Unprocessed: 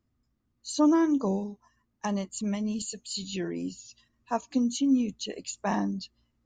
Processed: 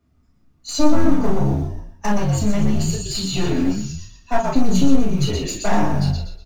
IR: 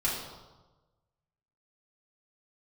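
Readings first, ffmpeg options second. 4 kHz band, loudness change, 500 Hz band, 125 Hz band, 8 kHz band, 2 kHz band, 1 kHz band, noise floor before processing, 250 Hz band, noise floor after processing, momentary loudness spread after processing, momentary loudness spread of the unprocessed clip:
+9.5 dB, +8.0 dB, +9.0 dB, +19.0 dB, +8.0 dB, +10.5 dB, +9.0 dB, −76 dBFS, +7.0 dB, −59 dBFS, 9 LU, 14 LU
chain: -filter_complex "[0:a]acontrast=59,highpass=frequency=50:width=0.5412,highpass=frequency=50:width=1.3066,asplit=6[link_01][link_02][link_03][link_04][link_05][link_06];[link_02]adelay=121,afreqshift=-57,volume=-5dB[link_07];[link_03]adelay=242,afreqshift=-114,volume=-13.6dB[link_08];[link_04]adelay=363,afreqshift=-171,volume=-22.3dB[link_09];[link_05]adelay=484,afreqshift=-228,volume=-30.9dB[link_10];[link_06]adelay=605,afreqshift=-285,volume=-39.5dB[link_11];[link_01][link_07][link_08][link_09][link_10][link_11]amix=inputs=6:normalize=0,aeval=exprs='clip(val(0),-1,0.0531)':channel_layout=same,bass=frequency=250:gain=1,treble=frequency=4000:gain=5,acrusher=bits=6:mode=log:mix=0:aa=0.000001,highshelf=frequency=3800:gain=-11,bandreject=frequency=60:width_type=h:width=6,bandreject=frequency=120:width_type=h:width=6,bandreject=frequency=180:width_type=h:width=6,bandreject=frequency=240:width_type=h:width=6,acompressor=threshold=-22dB:ratio=3[link_12];[1:a]atrim=start_sample=2205,atrim=end_sample=3087[link_13];[link_12][link_13]afir=irnorm=-1:irlink=0,volume=1dB"

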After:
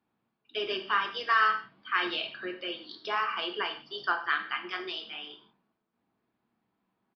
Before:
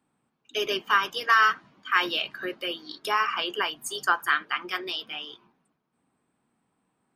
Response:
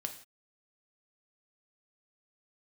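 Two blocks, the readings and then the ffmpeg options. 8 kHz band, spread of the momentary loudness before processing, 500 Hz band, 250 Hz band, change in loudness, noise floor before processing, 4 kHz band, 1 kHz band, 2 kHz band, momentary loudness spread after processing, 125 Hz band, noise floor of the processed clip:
below −25 dB, 13 LU, −4.0 dB, −3.0 dB, −4.5 dB, −77 dBFS, −4.5 dB, −4.5 dB, −5.0 dB, 12 LU, can't be measured, −82 dBFS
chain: -filter_complex "[1:a]atrim=start_sample=2205,asetrate=48510,aresample=44100[link_01];[0:a][link_01]afir=irnorm=-1:irlink=0,aresample=11025,aresample=44100,volume=-3dB"

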